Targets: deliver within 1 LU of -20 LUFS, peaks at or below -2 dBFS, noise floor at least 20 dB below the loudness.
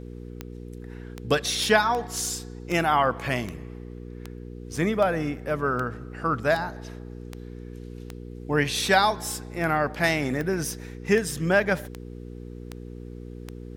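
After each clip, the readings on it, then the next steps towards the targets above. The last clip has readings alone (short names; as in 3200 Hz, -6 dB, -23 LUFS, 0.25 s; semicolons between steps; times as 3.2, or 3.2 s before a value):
clicks 18; hum 60 Hz; harmonics up to 480 Hz; hum level -37 dBFS; loudness -25.0 LUFS; peak -6.0 dBFS; loudness target -20.0 LUFS
-> de-click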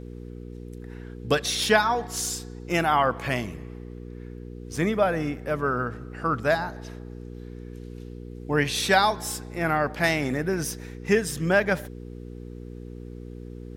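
clicks 0; hum 60 Hz; harmonics up to 480 Hz; hum level -37 dBFS
-> de-hum 60 Hz, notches 8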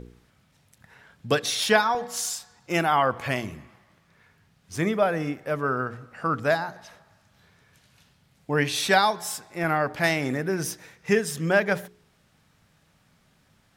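hum none; loudness -25.0 LUFS; peak -6.0 dBFS; loudness target -20.0 LUFS
-> gain +5 dB; limiter -2 dBFS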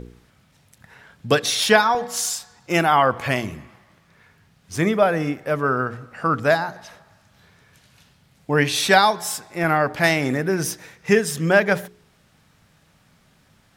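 loudness -20.0 LUFS; peak -2.0 dBFS; noise floor -59 dBFS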